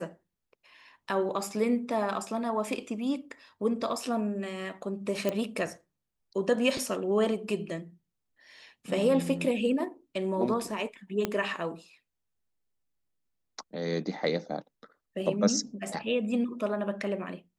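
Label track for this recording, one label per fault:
5.290000	5.290000	pop -15 dBFS
11.250000	11.250000	pop -14 dBFS

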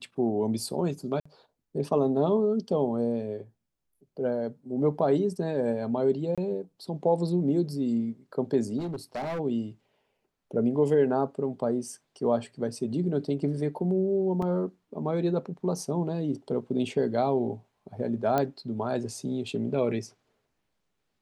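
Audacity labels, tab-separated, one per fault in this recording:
1.200000	1.250000	gap 55 ms
6.350000	6.380000	gap 26 ms
8.780000	9.400000	clipped -29 dBFS
14.420000	14.420000	gap 3.8 ms
18.380000	18.380000	pop -13 dBFS

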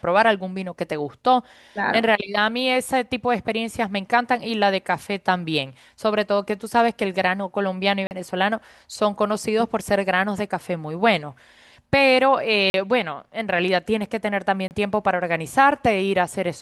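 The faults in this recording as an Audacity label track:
8.070000	8.110000	gap 39 ms
12.700000	12.740000	gap 41 ms
14.680000	14.710000	gap 29 ms

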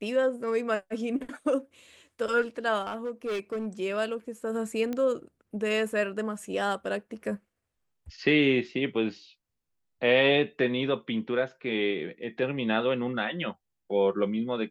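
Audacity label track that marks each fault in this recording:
2.820000	3.670000	clipped -28 dBFS
4.930000	4.930000	pop -20 dBFS

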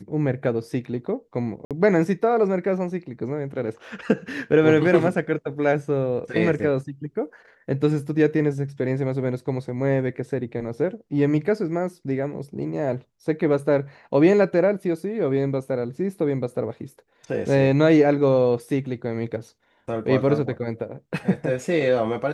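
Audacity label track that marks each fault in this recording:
1.650000	1.710000	gap 57 ms

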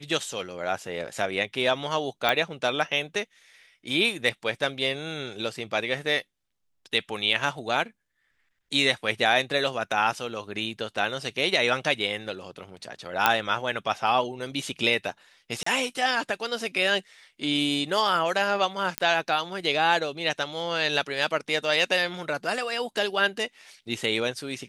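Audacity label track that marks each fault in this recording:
2.290000	2.290000	pop -9 dBFS
13.260000	13.260000	pop -4 dBFS
15.630000	15.660000	gap 34 ms
18.980000	18.980000	pop -8 dBFS

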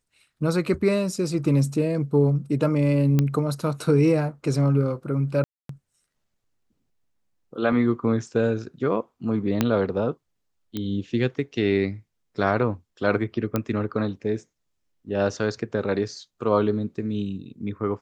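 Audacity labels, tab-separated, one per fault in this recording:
3.190000	3.190000	pop -9 dBFS
5.440000	5.690000	gap 0.253 s
9.610000	9.610000	pop -6 dBFS
10.770000	10.770000	pop -16 dBFS
13.560000	13.560000	pop -10 dBFS

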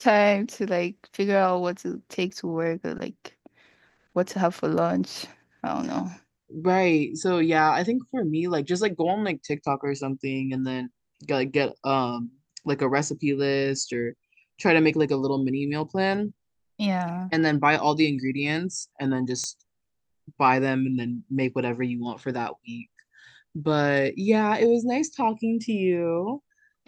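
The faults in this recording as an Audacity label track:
2.300000	2.310000	gap 5.7 ms
19.440000	19.440000	pop -20 dBFS

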